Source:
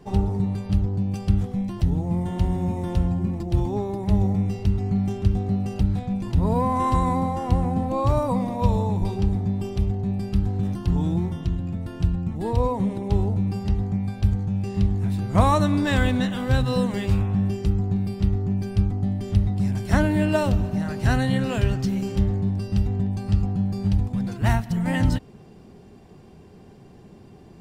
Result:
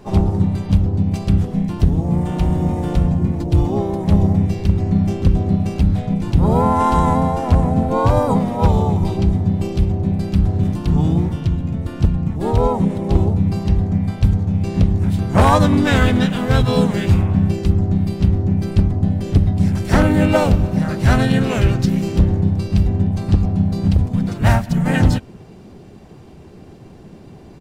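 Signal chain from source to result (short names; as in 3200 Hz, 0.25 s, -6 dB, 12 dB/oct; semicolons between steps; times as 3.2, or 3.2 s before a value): harmoniser -3 st -3 dB, +5 st -13 dB; wavefolder -9 dBFS; gain +5 dB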